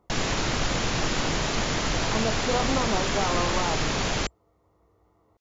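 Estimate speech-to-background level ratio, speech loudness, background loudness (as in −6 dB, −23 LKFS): −4.0 dB, −30.5 LKFS, −26.5 LKFS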